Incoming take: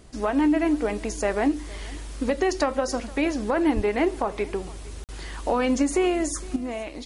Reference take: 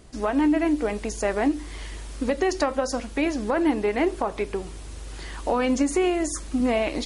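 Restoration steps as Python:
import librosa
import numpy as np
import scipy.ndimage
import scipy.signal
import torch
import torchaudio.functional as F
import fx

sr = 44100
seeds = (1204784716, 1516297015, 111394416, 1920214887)

y = fx.fix_deplosive(x, sr, at_s=(3.75,))
y = fx.fix_interpolate(y, sr, at_s=(5.04,), length_ms=48.0)
y = fx.fix_echo_inverse(y, sr, delay_ms=462, level_db=-22.0)
y = fx.gain(y, sr, db=fx.steps((0.0, 0.0), (6.56, 9.0)))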